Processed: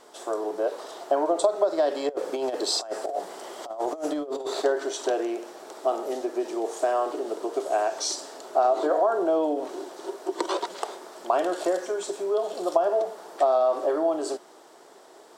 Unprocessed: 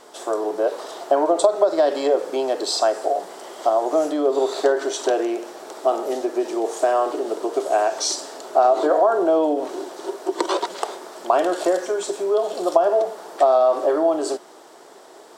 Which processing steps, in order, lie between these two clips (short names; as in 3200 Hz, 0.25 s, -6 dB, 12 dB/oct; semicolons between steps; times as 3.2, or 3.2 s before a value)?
2.09–4.62 negative-ratio compressor -23 dBFS, ratio -0.5; gain -5.5 dB